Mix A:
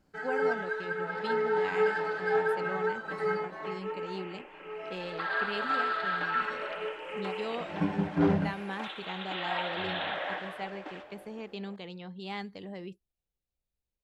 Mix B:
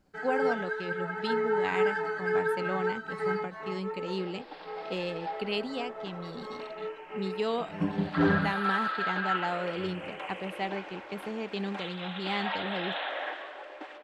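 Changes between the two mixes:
speech +5.5 dB
second sound: entry +2.95 s

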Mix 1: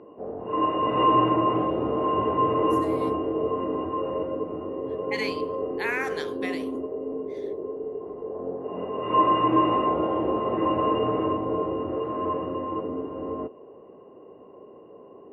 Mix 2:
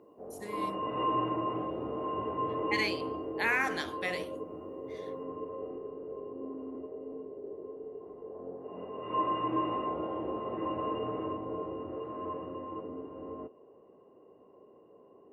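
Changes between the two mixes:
speech: entry −2.40 s
background −10.5 dB

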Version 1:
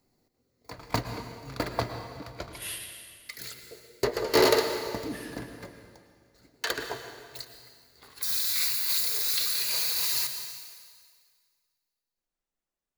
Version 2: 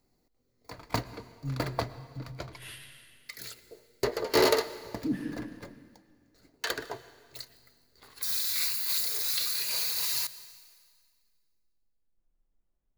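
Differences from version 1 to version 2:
speech: add spectral tilt −4 dB per octave
background: send −11.0 dB

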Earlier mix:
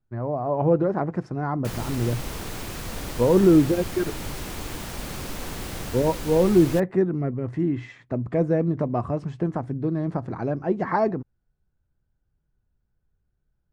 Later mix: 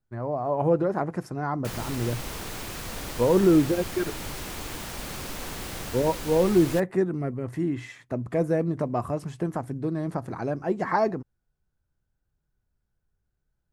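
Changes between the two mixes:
speech: remove high-frequency loss of the air 120 metres
master: add low-shelf EQ 470 Hz −4.5 dB

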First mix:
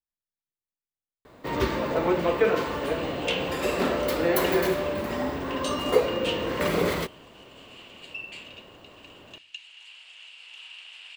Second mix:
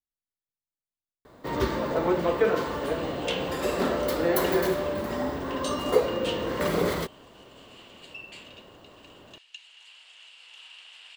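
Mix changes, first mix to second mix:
first sound: send off
master: add parametric band 2,500 Hz −6 dB 0.54 octaves

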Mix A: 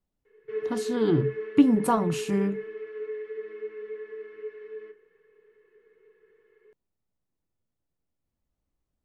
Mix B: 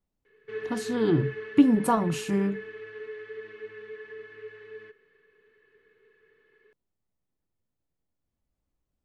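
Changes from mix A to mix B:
background +11.0 dB
reverb: off

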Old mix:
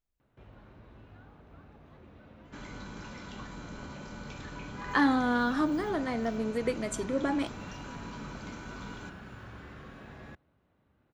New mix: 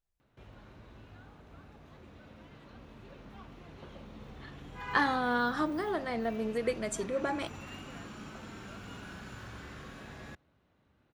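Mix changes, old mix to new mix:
speech: add parametric band 270 Hz −13.5 dB 0.24 octaves
first sound: add parametric band 10,000 Hz +12 dB 2.3 octaves
second sound: muted

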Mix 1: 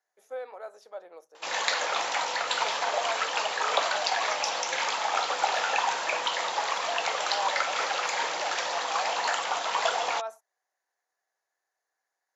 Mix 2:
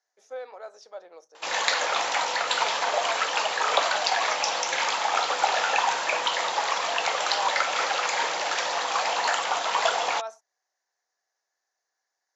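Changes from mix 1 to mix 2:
speech: add low-pass with resonance 5,700 Hz, resonance Q 2.8
background +3.0 dB

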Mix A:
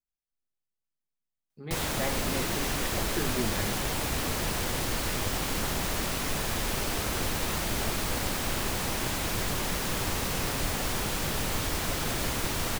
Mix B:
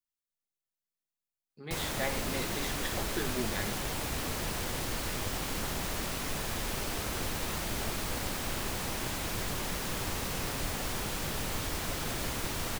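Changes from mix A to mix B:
speech: add spectral tilt +2 dB per octave
background −4.5 dB

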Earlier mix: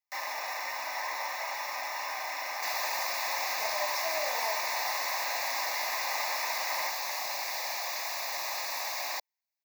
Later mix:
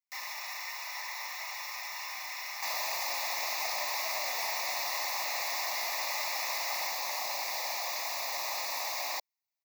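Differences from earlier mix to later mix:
speech −10.5 dB
first sound: add Bessel high-pass filter 1,600 Hz, order 2
master: add parametric band 1,600 Hz −10.5 dB 0.21 octaves

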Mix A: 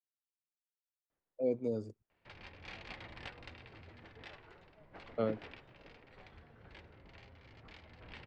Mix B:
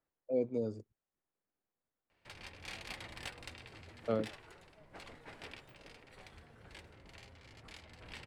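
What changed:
speech: entry −1.10 s
background: remove high-frequency loss of the air 200 metres

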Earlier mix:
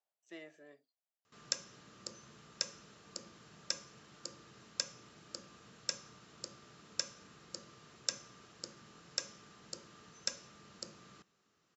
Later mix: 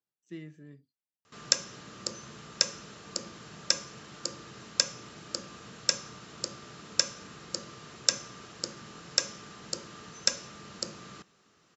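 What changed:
speech: remove high-pass with resonance 650 Hz, resonance Q 4.5
background +11.0 dB

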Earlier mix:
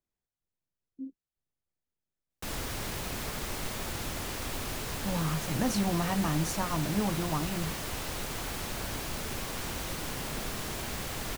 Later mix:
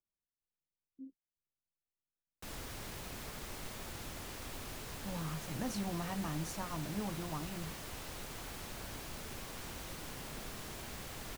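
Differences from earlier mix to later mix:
speech −9.5 dB
background −9.5 dB

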